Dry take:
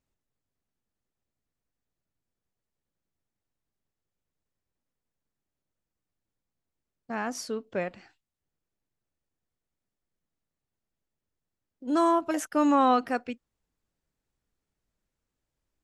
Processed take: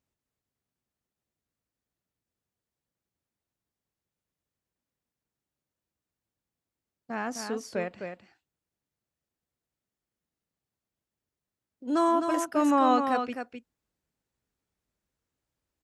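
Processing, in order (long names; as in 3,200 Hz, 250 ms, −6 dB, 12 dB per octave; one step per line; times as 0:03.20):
high-pass filter 53 Hz
single-tap delay 258 ms −6.5 dB
level −1 dB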